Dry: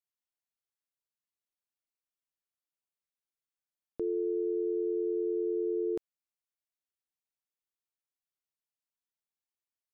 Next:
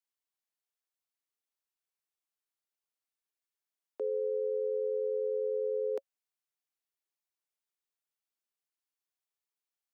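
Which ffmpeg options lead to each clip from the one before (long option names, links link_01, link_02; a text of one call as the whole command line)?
ffmpeg -i in.wav -af "afreqshift=80,highpass=frequency=310:width=0.5412,highpass=frequency=310:width=1.3066,bandreject=frequency=550:width=12" out.wav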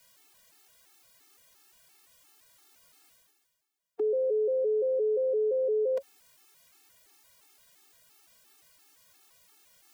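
ffmpeg -i in.wav -af "areverse,acompressor=mode=upward:threshold=-47dB:ratio=2.5,areverse,afftfilt=real='re*gt(sin(2*PI*2.9*pts/sr)*(1-2*mod(floor(b*sr/1024/230),2)),0)':imag='im*gt(sin(2*PI*2.9*pts/sr)*(1-2*mod(floor(b*sr/1024/230),2)),0)':win_size=1024:overlap=0.75,volume=9dB" out.wav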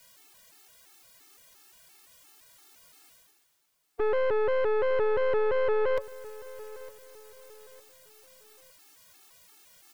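ffmpeg -i in.wav -af "aeval=exprs='(tanh(44.7*val(0)+0.7)-tanh(0.7))/44.7':channel_layout=same,aecho=1:1:907|1814|2721:0.119|0.0428|0.0154,volume=8.5dB" out.wav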